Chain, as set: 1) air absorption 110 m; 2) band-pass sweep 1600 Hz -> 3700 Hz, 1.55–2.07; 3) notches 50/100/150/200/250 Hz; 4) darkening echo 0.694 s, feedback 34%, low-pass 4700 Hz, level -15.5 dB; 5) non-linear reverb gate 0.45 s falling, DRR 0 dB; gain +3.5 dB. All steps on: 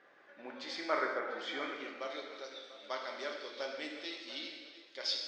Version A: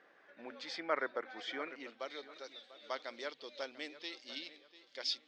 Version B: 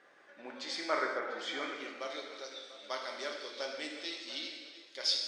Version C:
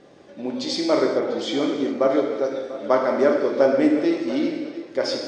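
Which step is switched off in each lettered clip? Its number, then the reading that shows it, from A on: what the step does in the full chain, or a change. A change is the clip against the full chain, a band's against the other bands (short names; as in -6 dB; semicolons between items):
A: 5, loudness change -3.0 LU; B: 1, 8 kHz band +6.5 dB; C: 2, 250 Hz band +16.0 dB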